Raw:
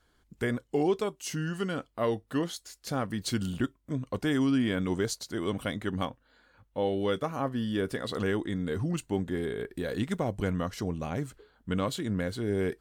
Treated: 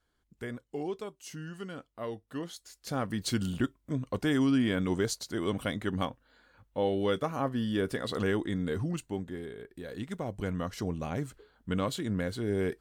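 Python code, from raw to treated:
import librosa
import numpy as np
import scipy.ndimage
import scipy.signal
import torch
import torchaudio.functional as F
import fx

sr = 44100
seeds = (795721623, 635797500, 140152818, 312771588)

y = fx.gain(x, sr, db=fx.line((2.28, -9.0), (3.1, 0.0), (8.68, 0.0), (9.63, -10.5), (10.83, -1.0)))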